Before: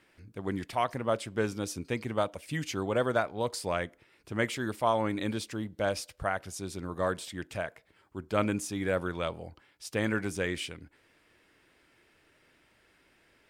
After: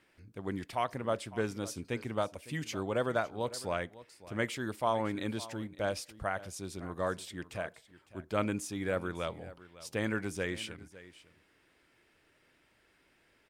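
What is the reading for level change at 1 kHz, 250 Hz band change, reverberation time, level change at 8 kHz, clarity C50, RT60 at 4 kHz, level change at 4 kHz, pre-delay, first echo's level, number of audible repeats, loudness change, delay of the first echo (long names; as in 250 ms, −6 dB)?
−3.5 dB, −3.5 dB, no reverb audible, −3.5 dB, no reverb audible, no reverb audible, −3.5 dB, no reverb audible, −17.5 dB, 1, −3.5 dB, 556 ms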